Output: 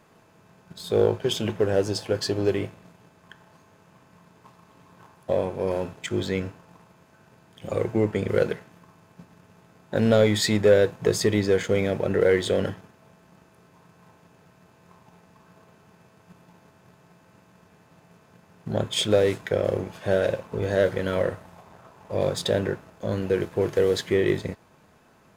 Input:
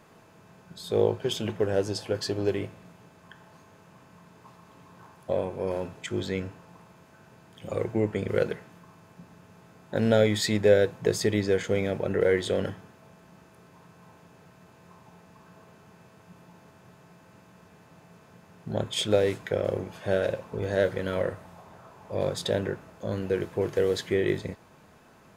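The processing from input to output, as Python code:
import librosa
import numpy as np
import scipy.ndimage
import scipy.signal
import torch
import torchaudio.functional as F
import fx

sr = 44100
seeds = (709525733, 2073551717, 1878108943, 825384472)

y = fx.leveller(x, sr, passes=1)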